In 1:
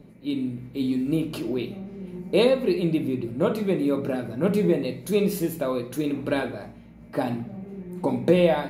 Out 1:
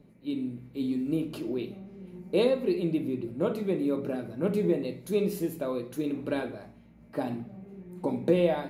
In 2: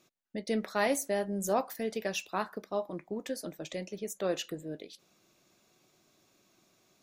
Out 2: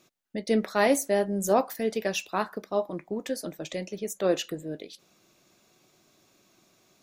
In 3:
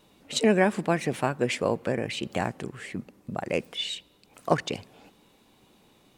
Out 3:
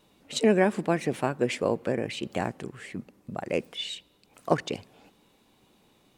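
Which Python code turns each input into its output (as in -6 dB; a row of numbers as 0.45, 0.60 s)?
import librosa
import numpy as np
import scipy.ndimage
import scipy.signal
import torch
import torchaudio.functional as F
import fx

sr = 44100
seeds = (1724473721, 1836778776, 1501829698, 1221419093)

y = fx.dynamic_eq(x, sr, hz=350.0, q=0.83, threshold_db=-33.0, ratio=4.0, max_db=4)
y = y * 10.0 ** (-30 / 20.0) / np.sqrt(np.mean(np.square(y)))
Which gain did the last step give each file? -8.0, +4.5, -3.0 dB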